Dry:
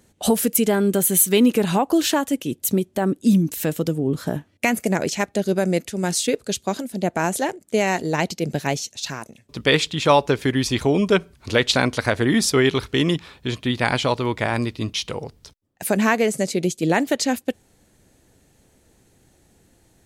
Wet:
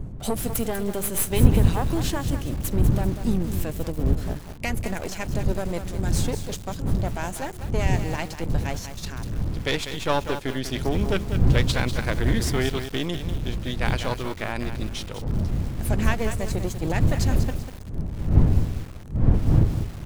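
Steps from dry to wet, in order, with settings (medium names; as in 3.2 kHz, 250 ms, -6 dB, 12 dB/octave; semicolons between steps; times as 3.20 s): partial rectifier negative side -12 dB; wind noise 110 Hz -19 dBFS; bit-crushed delay 195 ms, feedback 35%, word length 5-bit, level -8.5 dB; trim -5.5 dB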